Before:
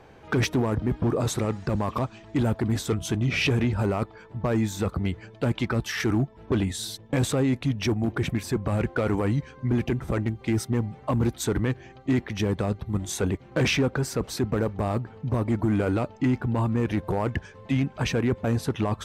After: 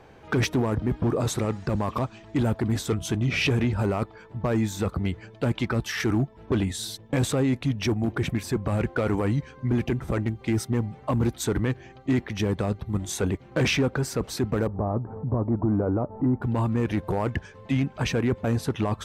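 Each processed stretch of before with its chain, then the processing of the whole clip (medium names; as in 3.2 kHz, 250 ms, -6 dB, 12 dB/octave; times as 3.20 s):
14.67–16.42 s: low-pass 1.1 kHz 24 dB/octave + upward compressor, threshold -26 dBFS
whole clip: none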